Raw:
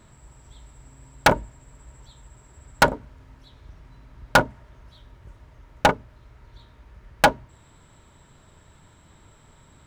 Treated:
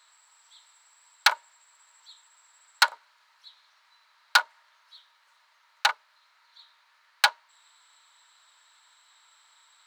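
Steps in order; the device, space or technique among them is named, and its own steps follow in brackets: headphones lying on a table (HPF 1000 Hz 24 dB/oct; bell 4200 Hz +10 dB 0.42 oct); gain -2 dB

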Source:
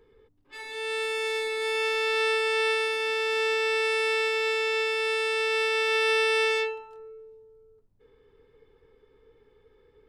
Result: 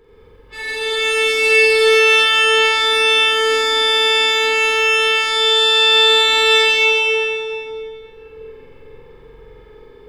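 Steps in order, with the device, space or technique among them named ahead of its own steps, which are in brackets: tunnel (flutter echo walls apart 7.7 m, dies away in 1.4 s; reverb RT60 3.3 s, pre-delay 81 ms, DRR -4.5 dB); gain +8 dB

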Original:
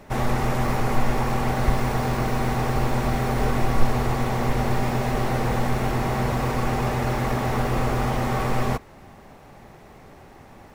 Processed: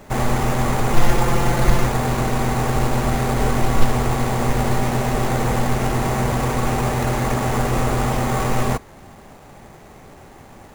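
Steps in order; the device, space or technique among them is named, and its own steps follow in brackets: 0.93–1.87 comb 5.8 ms, depth 82%; early companding sampler (sample-rate reducer 8300 Hz, jitter 0%; companded quantiser 6-bit); gain +3.5 dB

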